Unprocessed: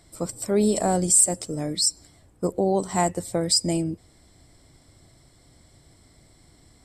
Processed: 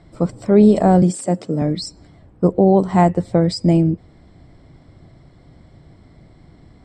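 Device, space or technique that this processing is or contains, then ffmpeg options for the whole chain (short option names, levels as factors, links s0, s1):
phone in a pocket: -filter_complex "[0:a]lowpass=3700,equalizer=f=170:t=o:w=0.74:g=5,highshelf=f=2100:g=-9,asettb=1/sr,asplit=3[s0][s1][s2];[s0]atrim=end=1.024[s3];[s1]atrim=start=1.02:end=1.62,asetpts=PTS-STARTPTS,afade=t=in:d=0.004:c=qsin,afade=t=out:st=0.596:d=0.004:c=qsin,highpass=f=140:w=0.5412,highpass=f=140:w=1.3066[s4];[s2]atrim=start=1.616[s5];[s3][s4]acrossfade=d=0.004:c1=hsin:c2=qsin[s6];[s6][s5]acrossfade=d=0.004:c1=qsin:c2=hsin,volume=2.66"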